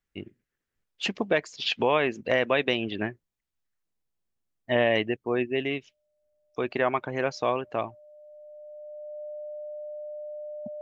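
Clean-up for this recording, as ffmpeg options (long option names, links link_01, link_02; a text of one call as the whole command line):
ffmpeg -i in.wav -af "bandreject=frequency=600:width=30" out.wav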